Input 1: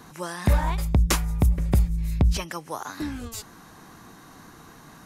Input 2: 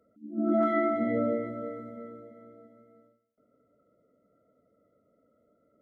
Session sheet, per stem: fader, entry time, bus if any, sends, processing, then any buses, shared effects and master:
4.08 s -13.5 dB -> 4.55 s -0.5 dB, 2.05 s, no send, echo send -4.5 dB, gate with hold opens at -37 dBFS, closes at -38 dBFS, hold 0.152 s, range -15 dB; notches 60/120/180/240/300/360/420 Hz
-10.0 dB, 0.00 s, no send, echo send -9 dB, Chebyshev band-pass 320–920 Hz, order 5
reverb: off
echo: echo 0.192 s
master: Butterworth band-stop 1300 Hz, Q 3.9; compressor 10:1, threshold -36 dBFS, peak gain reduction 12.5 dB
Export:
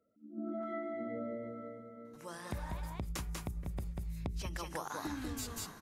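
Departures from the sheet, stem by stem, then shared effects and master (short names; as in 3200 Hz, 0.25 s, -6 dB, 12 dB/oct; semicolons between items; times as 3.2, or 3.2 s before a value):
stem 2: missing Chebyshev band-pass 320–920 Hz, order 5; master: missing Butterworth band-stop 1300 Hz, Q 3.9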